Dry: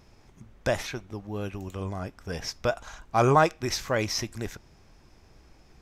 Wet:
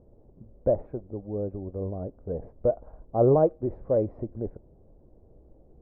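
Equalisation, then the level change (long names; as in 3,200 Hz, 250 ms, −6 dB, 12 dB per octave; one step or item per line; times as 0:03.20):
transistor ladder low-pass 620 Hz, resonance 55%
low-shelf EQ 120 Hz +4.5 dB
parametric band 280 Hz +2 dB
+7.0 dB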